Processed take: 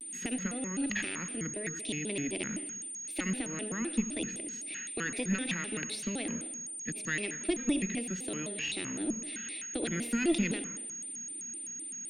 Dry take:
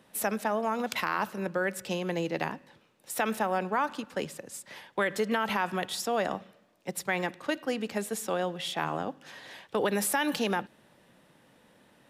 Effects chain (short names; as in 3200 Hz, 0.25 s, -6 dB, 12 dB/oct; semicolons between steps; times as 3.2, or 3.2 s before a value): 1.53–2.06 bell 1200 Hz -12.5 dB 0.78 oct; in parallel at +3 dB: compressor, threshold -37 dBFS, peak gain reduction 13 dB; on the sum: vowel filter i; added harmonics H 2 -14 dB, 6 -34 dB, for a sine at -24.5 dBFS; whine 7800 Hz -47 dBFS; on a send at -9 dB: reverb RT60 1.0 s, pre-delay 67 ms; on the sum: shaped vibrato square 3.9 Hz, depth 250 cents; gain +6.5 dB